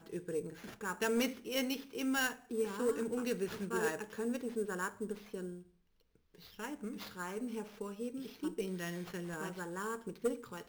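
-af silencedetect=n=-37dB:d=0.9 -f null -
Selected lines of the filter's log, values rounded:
silence_start: 5.50
silence_end: 6.60 | silence_duration: 1.10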